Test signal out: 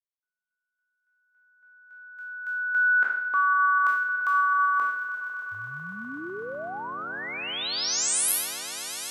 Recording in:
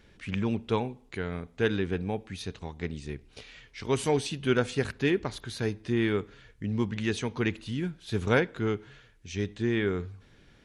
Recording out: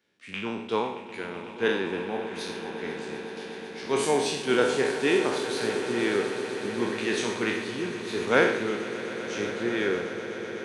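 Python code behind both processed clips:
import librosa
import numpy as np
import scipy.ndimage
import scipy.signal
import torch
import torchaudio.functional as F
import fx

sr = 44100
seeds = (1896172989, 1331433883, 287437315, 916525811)

y = fx.spec_trails(x, sr, decay_s=0.83)
y = scipy.signal.sosfilt(scipy.signal.butter(2, 260.0, 'highpass', fs=sr, output='sos'), y)
y = fx.echo_swell(y, sr, ms=125, loudest=8, wet_db=-14.5)
y = fx.band_widen(y, sr, depth_pct=40)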